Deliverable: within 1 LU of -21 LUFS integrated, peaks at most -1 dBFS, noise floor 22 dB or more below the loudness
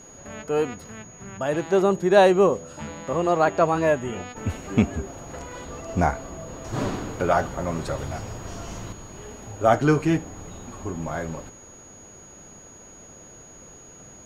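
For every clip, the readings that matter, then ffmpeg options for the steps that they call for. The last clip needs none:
steady tone 6.7 kHz; tone level -46 dBFS; loudness -23.5 LUFS; peak level -4.5 dBFS; loudness target -21.0 LUFS
-> -af "bandreject=f=6700:w=30"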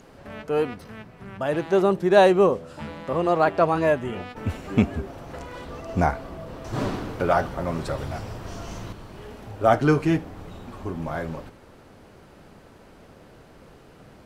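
steady tone not found; loudness -23.5 LUFS; peak level -4.5 dBFS; loudness target -21.0 LUFS
-> -af "volume=1.33"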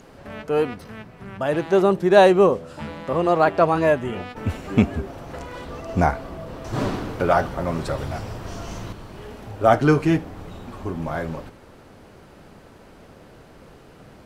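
loudness -21.0 LUFS; peak level -2.0 dBFS; noise floor -48 dBFS

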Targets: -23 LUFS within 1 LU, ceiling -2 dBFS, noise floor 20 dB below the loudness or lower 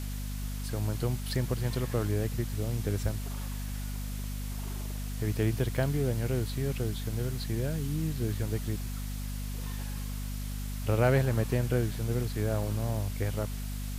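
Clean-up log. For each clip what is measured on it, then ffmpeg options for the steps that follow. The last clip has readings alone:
hum 50 Hz; highest harmonic 250 Hz; hum level -33 dBFS; noise floor -36 dBFS; noise floor target -53 dBFS; loudness -32.5 LUFS; peak level -14.0 dBFS; loudness target -23.0 LUFS
-> -af "bandreject=f=50:t=h:w=6,bandreject=f=100:t=h:w=6,bandreject=f=150:t=h:w=6,bandreject=f=200:t=h:w=6,bandreject=f=250:t=h:w=6"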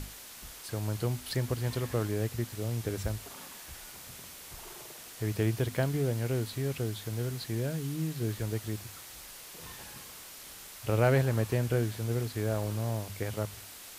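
hum not found; noise floor -48 dBFS; noise floor target -53 dBFS
-> -af "afftdn=nr=6:nf=-48"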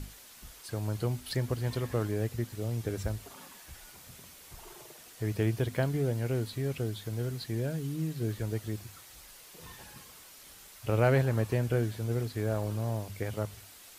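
noise floor -53 dBFS; loudness -32.5 LUFS; peak level -15.0 dBFS; loudness target -23.0 LUFS
-> -af "volume=2.99"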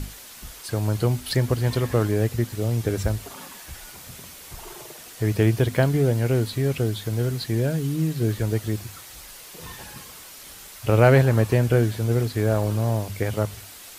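loudness -23.0 LUFS; peak level -5.5 dBFS; noise floor -43 dBFS

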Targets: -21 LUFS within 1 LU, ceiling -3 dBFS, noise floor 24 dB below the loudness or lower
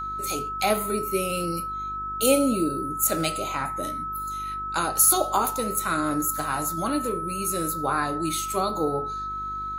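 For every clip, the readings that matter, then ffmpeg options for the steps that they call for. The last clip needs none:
hum 50 Hz; highest harmonic 400 Hz; hum level -41 dBFS; steady tone 1.3 kHz; tone level -29 dBFS; loudness -25.0 LUFS; peak level -5.0 dBFS; loudness target -21.0 LUFS
-> -af "bandreject=f=50:t=h:w=4,bandreject=f=100:t=h:w=4,bandreject=f=150:t=h:w=4,bandreject=f=200:t=h:w=4,bandreject=f=250:t=h:w=4,bandreject=f=300:t=h:w=4,bandreject=f=350:t=h:w=4,bandreject=f=400:t=h:w=4"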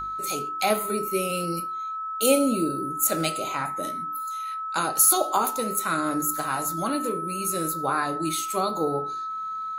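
hum not found; steady tone 1.3 kHz; tone level -29 dBFS
-> -af "bandreject=f=1300:w=30"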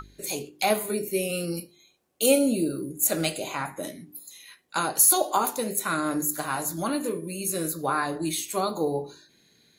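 steady tone not found; loudness -25.5 LUFS; peak level -5.0 dBFS; loudness target -21.0 LUFS
-> -af "volume=1.68,alimiter=limit=0.708:level=0:latency=1"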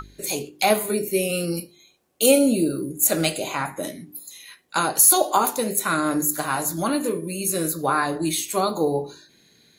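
loudness -21.5 LUFS; peak level -3.0 dBFS; noise floor -58 dBFS

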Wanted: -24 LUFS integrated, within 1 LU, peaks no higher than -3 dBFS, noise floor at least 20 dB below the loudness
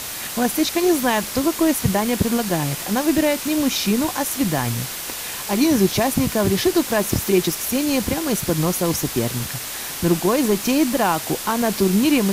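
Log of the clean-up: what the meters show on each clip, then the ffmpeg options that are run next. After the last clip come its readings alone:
noise floor -30 dBFS; noise floor target -40 dBFS; loudness -20.0 LUFS; peak level -4.0 dBFS; loudness target -24.0 LUFS
-> -af "afftdn=nr=10:nf=-30"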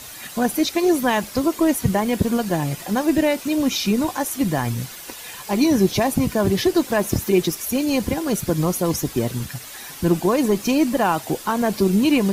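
noise floor -38 dBFS; noise floor target -41 dBFS
-> -af "afftdn=nr=6:nf=-38"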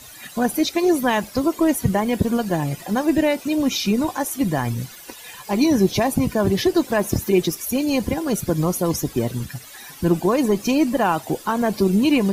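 noise floor -41 dBFS; loudness -21.0 LUFS; peak level -5.0 dBFS; loudness target -24.0 LUFS
-> -af "volume=0.708"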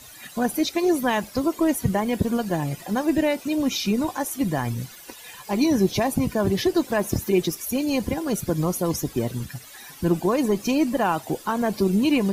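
loudness -24.0 LUFS; peak level -8.0 dBFS; noise floor -44 dBFS

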